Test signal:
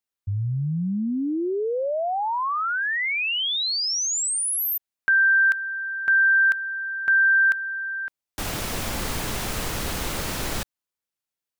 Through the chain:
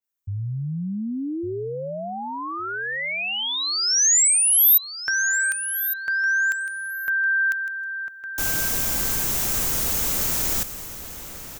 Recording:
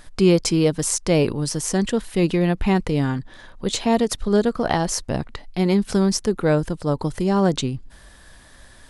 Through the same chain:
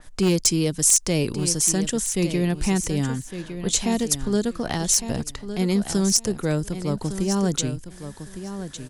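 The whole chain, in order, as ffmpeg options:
-filter_complex "[0:a]acrossover=split=360|1700[a][b][c];[b]acompressor=threshold=-32dB:ratio=2:release=936:knee=2.83:detection=peak[d];[a][d][c]amix=inputs=3:normalize=0,aexciter=amount=2.4:drive=3.3:freq=5.9k,aeval=exprs='0.316*(abs(mod(val(0)/0.316+3,4)-2)-1)':c=same,aecho=1:1:1158|2316:0.299|0.0537,adynamicequalizer=threshold=0.0158:dfrequency=4100:dqfactor=0.7:tfrequency=4100:tqfactor=0.7:attack=5:release=100:ratio=0.375:range=2.5:mode=boostabove:tftype=highshelf,volume=-2.5dB"

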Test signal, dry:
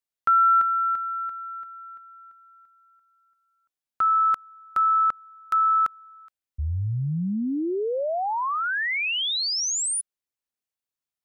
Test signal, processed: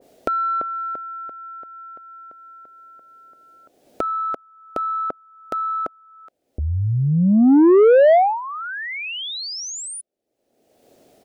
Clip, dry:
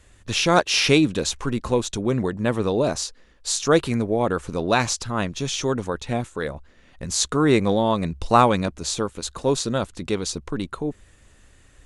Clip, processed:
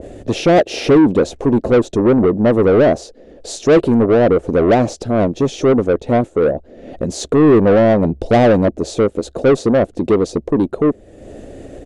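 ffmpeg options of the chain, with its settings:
-filter_complex "[0:a]acompressor=mode=upward:threshold=-28dB:ratio=2.5:attack=3.9:release=483:knee=2.83:detection=peak,firequalizer=gain_entry='entry(150,0);entry(270,5);entry(660,1);entry(1000,-24)':delay=0.05:min_phase=1,acontrast=54,asplit=2[a][b];[b]highpass=f=720:p=1,volume=21dB,asoftclip=type=tanh:threshold=-4.5dB[c];[a][c]amix=inputs=2:normalize=0,lowpass=f=7.2k:p=1,volume=-6dB,adynamicequalizer=threshold=0.0562:dfrequency=1600:dqfactor=0.7:tfrequency=1600:tqfactor=0.7:attack=5:release=100:ratio=0.375:range=3:mode=cutabove:tftype=highshelf"

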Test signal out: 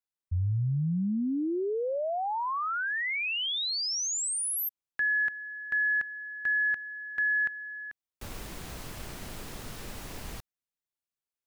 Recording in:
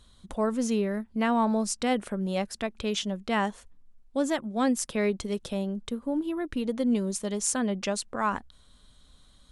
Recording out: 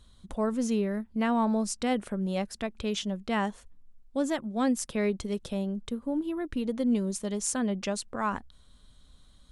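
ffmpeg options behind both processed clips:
-af "lowshelf=f=250:g=4.5,volume=-3dB"

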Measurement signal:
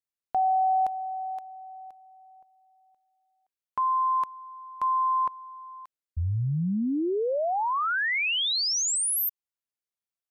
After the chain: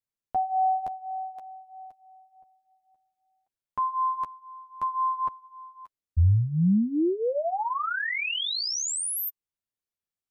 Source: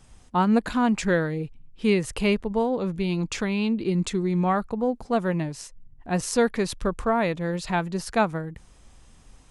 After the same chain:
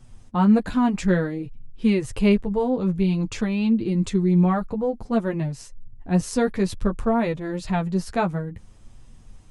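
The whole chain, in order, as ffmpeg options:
-af "flanger=delay=8:depth=3.6:regen=-9:speed=0.55:shape=triangular,lowshelf=f=320:g=10"

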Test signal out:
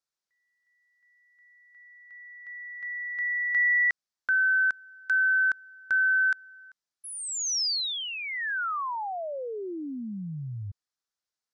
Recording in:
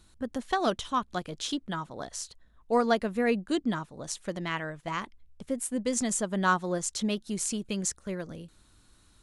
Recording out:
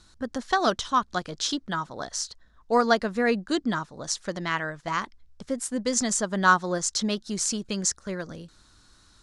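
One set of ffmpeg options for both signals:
-af "crystalizer=i=5:c=0,lowpass=f=5.1k:t=q:w=1.7,highshelf=f=2k:t=q:w=1.5:g=-7.5,volume=1.5dB"

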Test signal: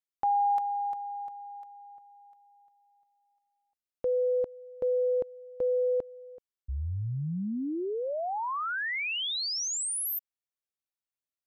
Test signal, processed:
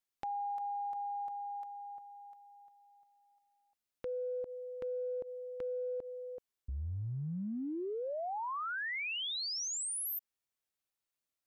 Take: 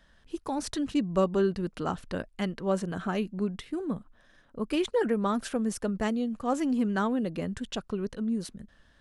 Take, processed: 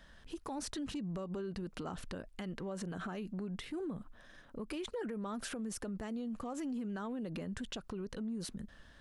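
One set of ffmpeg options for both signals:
-af "acompressor=threshold=-39dB:ratio=10:attack=0.82:release=94:knee=6:detection=peak,volume=3dB"

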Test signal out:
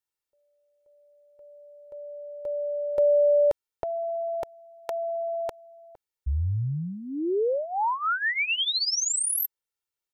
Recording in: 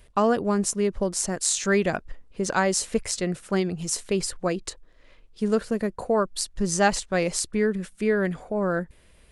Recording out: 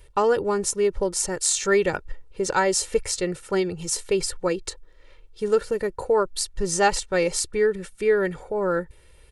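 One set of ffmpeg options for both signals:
-af "aecho=1:1:2.2:0.69"

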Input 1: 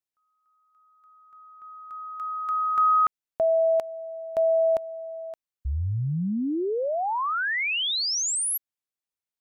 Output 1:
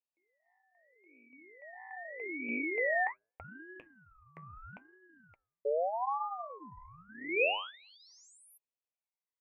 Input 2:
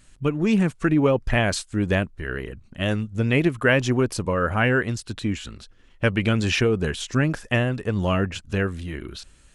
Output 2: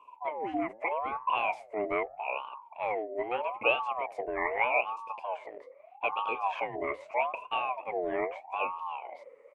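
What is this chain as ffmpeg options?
-filter_complex "[0:a]flanger=delay=3.2:depth=9.7:regen=-58:speed=1.5:shape=sinusoidal,bandreject=f=113:t=h:w=4,bandreject=f=226:t=h:w=4,bandreject=f=339:t=h:w=4,bandreject=f=452:t=h:w=4,bandreject=f=565:t=h:w=4,bandreject=f=678:t=h:w=4,bandreject=f=791:t=h:w=4,bandreject=f=904:t=h:w=4,bandreject=f=1.017k:t=h:w=4,bandreject=f=1.13k:t=h:w=4,asplit=2[a][b];[b]acompressor=threshold=-37dB:ratio=6:attack=4.2:release=22:knee=6,volume=-3dB[c];[a][c]amix=inputs=2:normalize=0,firequalizer=gain_entry='entry(120,0);entry(330,-17);entry(790,-26);entry(1500,6);entry(2900,-28);entry(7800,-30)':delay=0.05:min_phase=1,aeval=exprs='val(0)*sin(2*PI*760*n/s+760*0.35/0.8*sin(2*PI*0.8*n/s))':c=same"

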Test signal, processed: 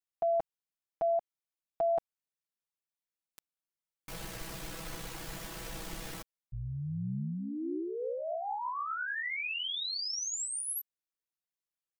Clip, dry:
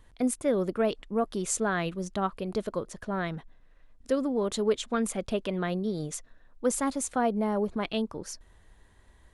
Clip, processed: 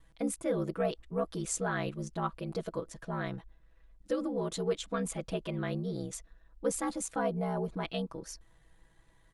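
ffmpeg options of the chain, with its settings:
-af "aeval=exprs='val(0)*sin(2*PI*32*n/s)':c=same,aecho=1:1:6.1:0.93,volume=-4.5dB"

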